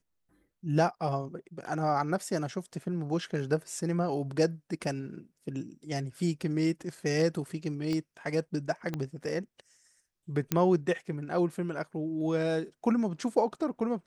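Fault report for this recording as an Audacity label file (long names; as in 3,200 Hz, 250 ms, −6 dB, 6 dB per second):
7.930000	7.930000	click −22 dBFS
8.940000	8.940000	click −20 dBFS
10.520000	10.520000	click −12 dBFS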